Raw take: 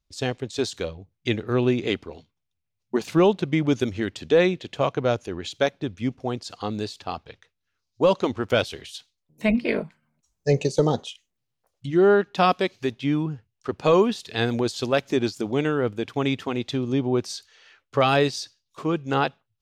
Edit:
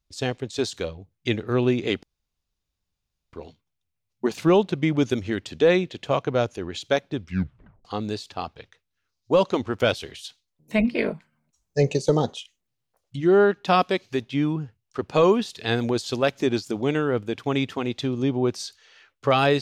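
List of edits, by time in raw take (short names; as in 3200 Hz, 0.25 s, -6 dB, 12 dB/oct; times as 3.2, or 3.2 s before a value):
2.03 insert room tone 1.30 s
5.91 tape stop 0.64 s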